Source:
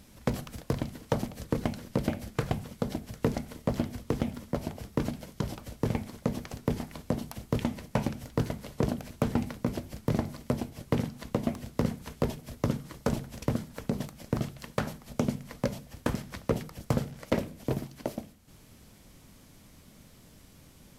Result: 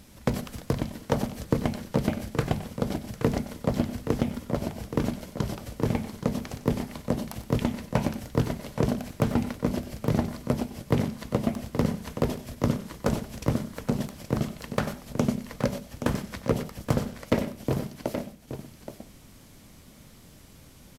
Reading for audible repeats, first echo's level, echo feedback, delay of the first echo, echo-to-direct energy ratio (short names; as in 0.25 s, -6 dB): 2, -15.0 dB, no steady repeat, 93 ms, -7.5 dB